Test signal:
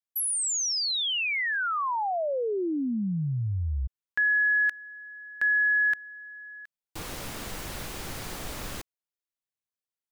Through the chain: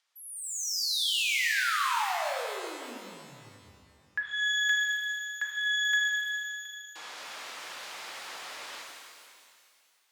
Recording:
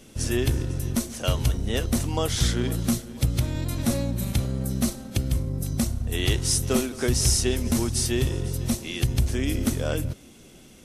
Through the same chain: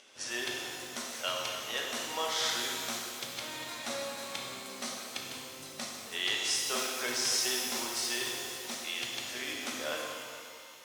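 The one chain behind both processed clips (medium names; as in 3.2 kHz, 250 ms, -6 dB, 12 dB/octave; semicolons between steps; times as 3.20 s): high-pass 840 Hz 12 dB/octave; upward compressor, threshold -52 dBFS; low-pass 5.4 kHz 12 dB/octave; pitch-shifted reverb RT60 2.2 s, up +12 st, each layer -8 dB, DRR -1.5 dB; trim -3.5 dB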